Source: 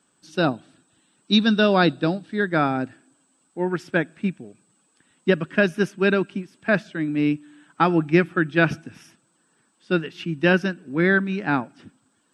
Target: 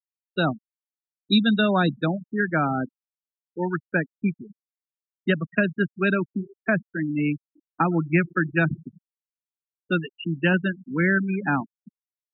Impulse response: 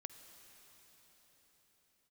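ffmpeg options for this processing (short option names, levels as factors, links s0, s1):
-filter_complex "[0:a]asplit=2[s0][s1];[1:a]atrim=start_sample=2205,asetrate=74970,aresample=44100,lowshelf=f=170:g=-6.5[s2];[s1][s2]afir=irnorm=-1:irlink=0,volume=0.891[s3];[s0][s3]amix=inputs=2:normalize=0,acrossover=split=240|660[s4][s5][s6];[s5]acompressor=threshold=0.0251:ratio=4[s7];[s6]acompressor=threshold=0.0891:ratio=4[s8];[s4][s7][s8]amix=inputs=3:normalize=0,afftfilt=real='re*gte(hypot(re,im),0.0891)':imag='im*gte(hypot(re,im),0.0891)':win_size=1024:overlap=0.75"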